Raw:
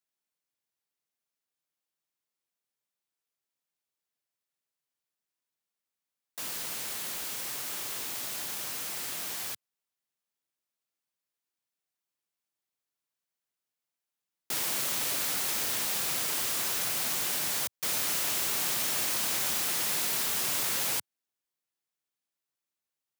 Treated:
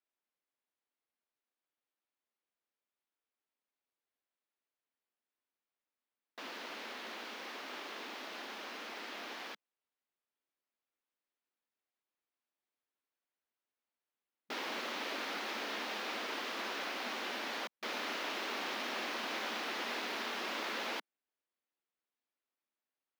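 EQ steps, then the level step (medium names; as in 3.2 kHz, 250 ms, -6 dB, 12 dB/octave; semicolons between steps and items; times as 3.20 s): brick-wall FIR high-pass 200 Hz; distance through air 280 m; +1.0 dB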